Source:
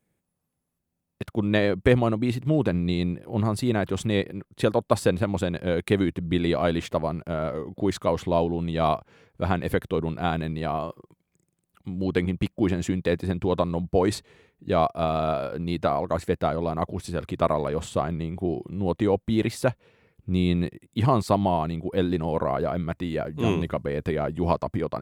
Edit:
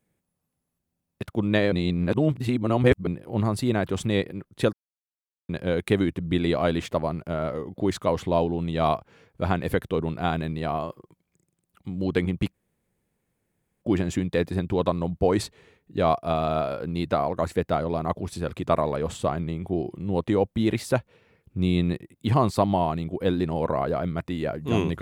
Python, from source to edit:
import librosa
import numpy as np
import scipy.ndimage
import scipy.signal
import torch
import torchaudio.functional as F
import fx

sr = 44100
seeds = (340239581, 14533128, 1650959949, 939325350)

y = fx.edit(x, sr, fx.reverse_span(start_s=1.72, length_s=1.35),
    fx.silence(start_s=4.73, length_s=0.76),
    fx.insert_room_tone(at_s=12.54, length_s=1.28), tone=tone)